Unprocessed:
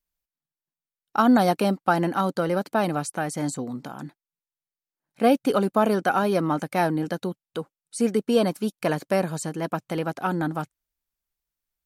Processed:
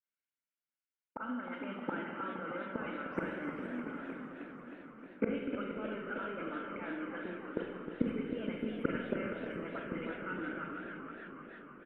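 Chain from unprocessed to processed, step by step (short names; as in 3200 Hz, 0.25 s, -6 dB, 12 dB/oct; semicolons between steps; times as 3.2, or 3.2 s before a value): spectral delay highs late, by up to 0.128 s; gate with hold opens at -38 dBFS; elliptic band-pass 260–2900 Hz; comb 1.4 ms, depth 47%; reverse; compressor 6:1, threshold -28 dBFS, peak gain reduction 13.5 dB; reverse; flipped gate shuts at -31 dBFS, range -25 dB; fixed phaser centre 1800 Hz, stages 4; on a send: feedback echo 0.469 s, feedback 55%, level -11 dB; on the sum: Schroeder reverb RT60 1.3 s, combs from 33 ms, DRR 1.5 dB; warbling echo 0.308 s, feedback 71%, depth 171 cents, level -8.5 dB; gain +18 dB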